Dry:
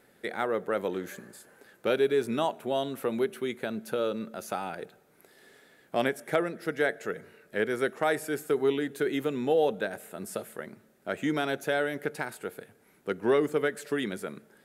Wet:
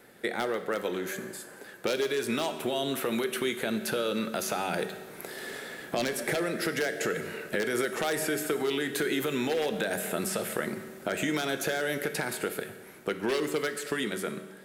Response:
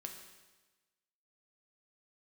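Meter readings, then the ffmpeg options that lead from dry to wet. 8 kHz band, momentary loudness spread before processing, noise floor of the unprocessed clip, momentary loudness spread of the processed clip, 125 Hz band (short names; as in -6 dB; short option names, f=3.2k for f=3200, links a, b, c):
+10.0 dB, 15 LU, -63 dBFS, 8 LU, +1.5 dB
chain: -filter_complex "[0:a]aeval=exprs='0.133*(abs(mod(val(0)/0.133+3,4)-2)-1)':c=same,dynaudnorm=f=530:g=11:m=11dB,alimiter=limit=-17.5dB:level=0:latency=1:release=76,acrossover=split=700|1800|4400[a][b][c][d];[a]acompressor=threshold=-37dB:ratio=4[e];[b]acompressor=threshold=-47dB:ratio=4[f];[c]acompressor=threshold=-43dB:ratio=4[g];[d]acompressor=threshold=-43dB:ratio=4[h];[e][f][g][h]amix=inputs=4:normalize=0,asplit=2[i][j];[1:a]atrim=start_sample=2205,lowshelf=f=130:g=-7.5[k];[j][k]afir=irnorm=-1:irlink=0,volume=6dB[l];[i][l]amix=inputs=2:normalize=0"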